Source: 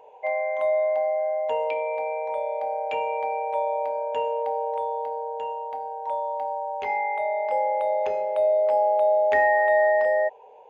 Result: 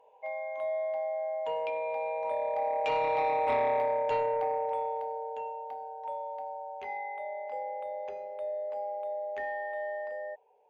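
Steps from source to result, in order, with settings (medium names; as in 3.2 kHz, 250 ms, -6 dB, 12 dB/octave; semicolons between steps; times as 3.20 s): Doppler pass-by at 3.47 s, 7 m/s, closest 5.4 m; in parallel at -6 dB: sine folder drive 9 dB, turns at -14.5 dBFS; on the sum: trim -8 dB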